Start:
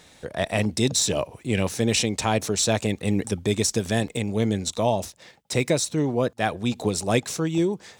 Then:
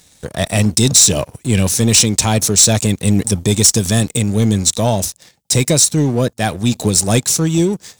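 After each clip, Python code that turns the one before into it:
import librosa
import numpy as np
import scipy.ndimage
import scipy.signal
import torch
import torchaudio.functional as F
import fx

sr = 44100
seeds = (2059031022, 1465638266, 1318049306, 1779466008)

y = fx.bass_treble(x, sr, bass_db=8, treble_db=14)
y = fx.leveller(y, sr, passes=2)
y = F.gain(torch.from_numpy(y), -2.5).numpy()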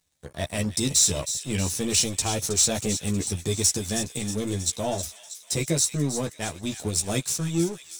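y = fx.power_curve(x, sr, exponent=1.4)
y = fx.echo_wet_highpass(y, sr, ms=318, feedback_pct=59, hz=2000.0, wet_db=-10)
y = fx.chorus_voices(y, sr, voices=6, hz=0.81, base_ms=13, depth_ms=1.8, mix_pct=40)
y = F.gain(torch.from_numpy(y), -6.0).numpy()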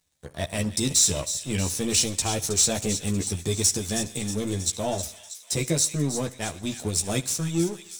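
y = fx.echo_feedback(x, sr, ms=70, feedback_pct=52, wet_db=-20.5)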